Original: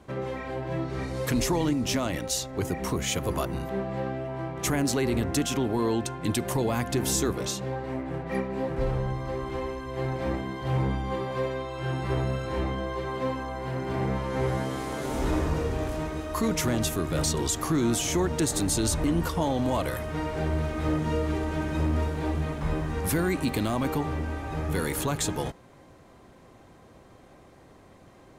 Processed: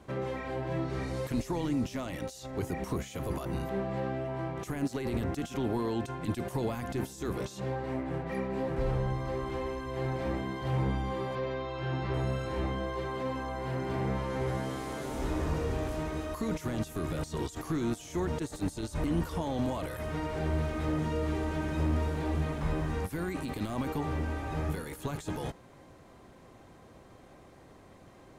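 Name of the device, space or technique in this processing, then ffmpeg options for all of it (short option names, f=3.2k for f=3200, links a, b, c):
de-esser from a sidechain: -filter_complex "[0:a]asettb=1/sr,asplit=3[a][b][c];[a]atrim=end=11.354[d];[b]atrim=start=11.35:end=12.14,asetpts=PTS-STARTPTS,afade=t=in:d=0.004:c=qsin,afade=t=out:st=0.786:d=0.004:c=qsin,lowpass=f=5.6k:w=0.5412,lowpass=f=5.6k:w=1.3066[e];[c]atrim=start=12.136[f];[d][e]acrossfade=d=0.004:c1=hsin:c2=qsin[g];[g][f]acrossfade=d=0.004:c1=qsin:c2=hsin,asplit=2[h][i];[i]highpass=f=6.7k:p=1,apad=whole_len=1251735[j];[h][j]sidechaincompress=threshold=-47dB:ratio=12:attack=1.6:release=21,volume=-1.5dB"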